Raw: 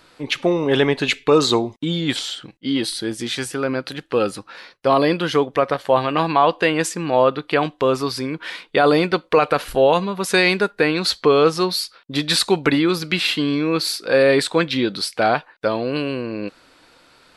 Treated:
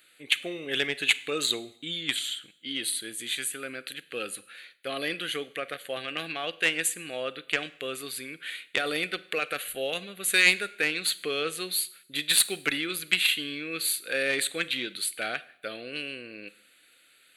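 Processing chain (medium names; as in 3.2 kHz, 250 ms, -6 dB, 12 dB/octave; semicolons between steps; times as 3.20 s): tilt EQ +4.5 dB/octave; static phaser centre 2.3 kHz, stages 4; Chebyshev shaper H 3 -14 dB, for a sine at 0.5 dBFS; Schroeder reverb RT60 0.66 s, combs from 33 ms, DRR 17.5 dB; trim -1.5 dB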